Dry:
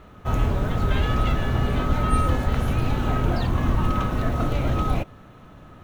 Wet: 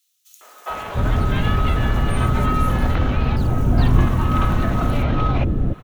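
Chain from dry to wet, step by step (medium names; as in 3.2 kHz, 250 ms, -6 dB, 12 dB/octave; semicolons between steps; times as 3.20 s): 2.95–3.37 s: tilt shelf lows +8 dB, about 680 Hz; in parallel at -2.5 dB: compressor with a negative ratio -24 dBFS; on the sum: three bands offset in time highs, mids, lows 410/700 ms, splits 490/5100 Hz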